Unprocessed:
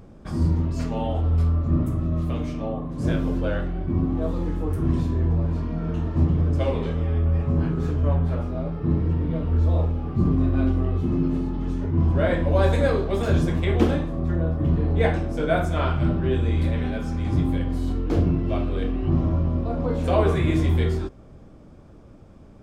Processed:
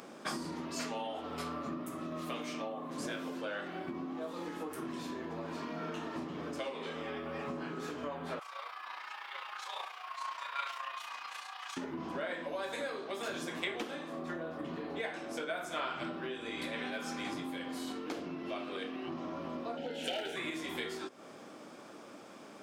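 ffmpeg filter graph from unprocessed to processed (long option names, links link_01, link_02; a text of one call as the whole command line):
ffmpeg -i in.wav -filter_complex "[0:a]asettb=1/sr,asplit=3[link_01][link_02][link_03];[link_01]atrim=end=8.394[link_04];[link_02]atrim=start=8.39:end=11.77,asetpts=PTS-STARTPTS,afade=type=in:duration=0.004:curve=qsin,afade=type=out:start_time=3.376:duration=0.004:curve=qsin,afreqshift=-92,tremolo=f=29:d=0.571,highpass=frequency=940:width=0.5412,highpass=frequency=940:width=1.3066[link_05];[link_03]atrim=start=11.766[link_06];[link_04][link_05]acrossfade=duration=0.004:curve1=hsin:curve2=qsin[link_07];[link_07][link_06]acrossfade=duration=0.004:curve1=qsin:curve2=hsin,asettb=1/sr,asplit=3[link_08][link_09][link_10];[link_08]atrim=end=19.774[link_11];[link_09]atrim=start=19.77:end=20.36,asetpts=PTS-STARTPTS,afade=type=in:duration=0.004:curve=qsin,afade=type=out:start_time=0.586:duration=0.004:curve=qsin,equalizer=frequency=3000:width=4.7:gain=14,asoftclip=type=hard:threshold=-15.5dB,asuperstop=centerf=1100:order=8:qfactor=2.5[link_12];[link_10]atrim=start=20.356[link_13];[link_11][link_12]acrossfade=duration=0.004:curve1=hsin:curve2=qsin[link_14];[link_14][link_13]acrossfade=duration=0.004:curve1=qsin:curve2=hsin,highpass=frequency=270:width=0.5412,highpass=frequency=270:width=1.3066,acompressor=threshold=-39dB:ratio=10,equalizer=frequency=360:width=0.47:gain=-11.5,volume=11.5dB" out.wav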